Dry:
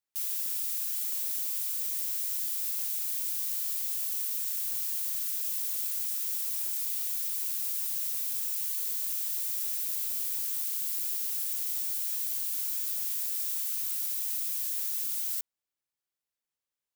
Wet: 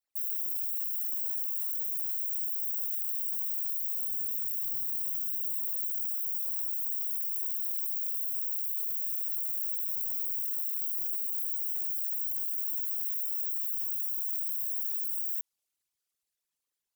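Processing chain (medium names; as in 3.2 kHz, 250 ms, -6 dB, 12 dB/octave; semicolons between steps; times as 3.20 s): resonances exaggerated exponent 3; feedback echo behind a band-pass 470 ms, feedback 81%, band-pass 1.3 kHz, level -12.5 dB; 3.99–5.65 s: mains buzz 120 Hz, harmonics 3, -61 dBFS -3 dB/octave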